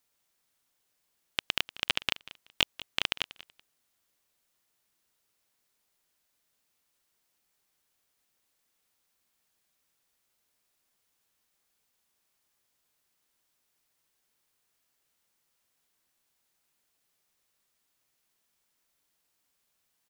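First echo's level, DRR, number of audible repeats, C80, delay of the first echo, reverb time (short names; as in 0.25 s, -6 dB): -17.5 dB, none, 2, none, 0.189 s, none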